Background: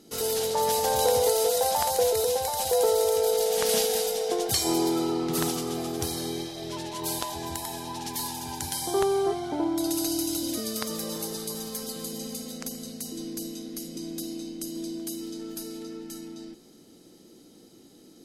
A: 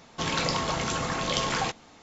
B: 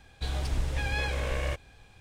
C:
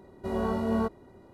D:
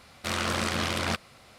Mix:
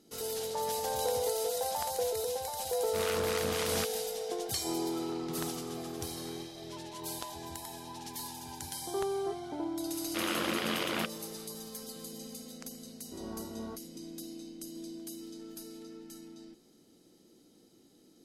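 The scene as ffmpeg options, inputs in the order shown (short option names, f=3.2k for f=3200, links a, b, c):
-filter_complex "[4:a]asplit=2[a][b];[0:a]volume=-9dB[c];[a]acrossover=split=930[d][e];[d]aeval=exprs='val(0)*(1-0.5/2+0.5/2*cos(2*PI*3.8*n/s))':c=same[f];[e]aeval=exprs='val(0)*(1-0.5/2-0.5/2*cos(2*PI*3.8*n/s))':c=same[g];[f][g]amix=inputs=2:normalize=0[h];[1:a]acompressor=threshold=-42dB:ratio=6:attack=3.2:release=140:knee=1:detection=peak[i];[b]highpass=f=140:w=0.5412,highpass=f=140:w=1.3066,equalizer=f=330:t=q:w=4:g=6,equalizer=f=480:t=q:w=4:g=4,equalizer=f=3k:t=q:w=4:g=5,lowpass=f=4.2k:w=0.5412,lowpass=f=4.2k:w=1.3066[j];[h]atrim=end=1.58,asetpts=PTS-STARTPTS,volume=-5.5dB,afade=t=in:d=0.004:c=hsin,afade=t=out:st=1.576:d=0.004:c=hsin,adelay=2690[k];[i]atrim=end=2.02,asetpts=PTS-STARTPTS,volume=-11.5dB,afade=t=in:d=0.004:c=hsin,afade=t=out:st=2.016:d=0.004:c=hsin,adelay=4750[l];[j]atrim=end=1.58,asetpts=PTS-STARTPTS,volume=-5.5dB,afade=t=in:d=0.004:c=hsin,afade=t=out:st=1.576:d=0.004:c=hsin,adelay=9900[m];[3:a]atrim=end=1.33,asetpts=PTS-STARTPTS,volume=-15.5dB,afade=t=in:d=0.004:c=hsin,afade=t=out:st=1.326:d=0.004:c=hsin,adelay=12880[n];[c][k][l][m][n]amix=inputs=5:normalize=0"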